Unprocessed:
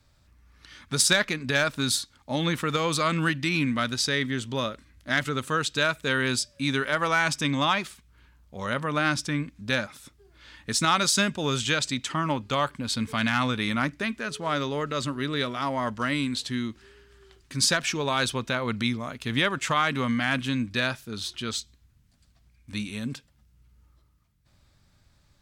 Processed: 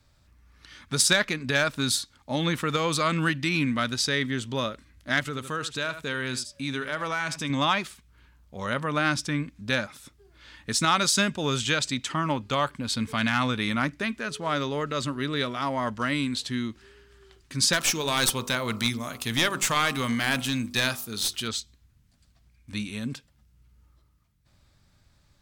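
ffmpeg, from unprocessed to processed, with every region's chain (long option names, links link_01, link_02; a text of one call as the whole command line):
ffmpeg -i in.wav -filter_complex "[0:a]asettb=1/sr,asplit=3[link_01][link_02][link_03];[link_01]atrim=end=5.204[link_04];[link_02]atrim=start=5.2:end=7.5,asetpts=PTS-STARTPTS,afade=type=in:duration=0.004:curve=qsin,afade=type=out:start_time=2.296:duration=0.004:curve=qsin,aecho=1:1:78:0.2,atrim=end_sample=101430,acompressor=threshold=-35dB:ratio=1.5:attack=3.2:release=140:knee=1:detection=peak[link_05];[link_03]atrim=start=7.496[link_06];[link_04][link_05]acrossfade=duration=0.004:curve1=hsin:curve2=qsin[link_07];[link_07][link_06]acrossfade=duration=0.004:curve1=qsin:curve2=hsin,asettb=1/sr,asplit=3[link_08][link_09][link_10];[link_08]atrim=end=17.734[link_11];[link_09]atrim=start=17.73:end=21.48,asetpts=PTS-STARTPTS,afade=type=in:duration=0.004:curve=qsin,afade=type=out:start_time=3.746:duration=0.004:curve=qsin,aemphasis=mode=production:type=75fm,bandreject=frequency=48.83:width_type=h:width=4,bandreject=frequency=97.66:width_type=h:width=4,bandreject=frequency=146.49:width_type=h:width=4,bandreject=frequency=195.32:width_type=h:width=4,bandreject=frequency=244.15:width_type=h:width=4,bandreject=frequency=292.98:width_type=h:width=4,bandreject=frequency=341.81:width_type=h:width=4,bandreject=frequency=390.64:width_type=h:width=4,bandreject=frequency=439.47:width_type=h:width=4,bandreject=frequency=488.3:width_type=h:width=4,bandreject=frequency=537.13:width_type=h:width=4,bandreject=frequency=585.96:width_type=h:width=4,bandreject=frequency=634.79:width_type=h:width=4,bandreject=frequency=683.62:width_type=h:width=4,bandreject=frequency=732.45:width_type=h:width=4,bandreject=frequency=781.28:width_type=h:width=4,bandreject=frequency=830.11:width_type=h:width=4,bandreject=frequency=878.94:width_type=h:width=4,bandreject=frequency=927.77:width_type=h:width=4,bandreject=frequency=976.6:width_type=h:width=4,bandreject=frequency=1025.43:width_type=h:width=4,bandreject=frequency=1074.26:width_type=h:width=4,bandreject=frequency=1123.09:width_type=h:width=4,bandreject=frequency=1171.92:width_type=h:width=4,bandreject=frequency=1220.75:width_type=h:width=4,bandreject=frequency=1269.58:width_type=h:width=4,bandreject=frequency=1318.41:width_type=h:width=4,bandreject=frequency=1367.24:width_type=h:width=4,aeval=exprs='clip(val(0),-1,0.0668)':channel_layout=same[link_12];[link_10]atrim=start=21.476[link_13];[link_11][link_12]acrossfade=duration=0.004:curve1=hsin:curve2=qsin[link_14];[link_14][link_13]acrossfade=duration=0.004:curve1=qsin:curve2=hsin" out.wav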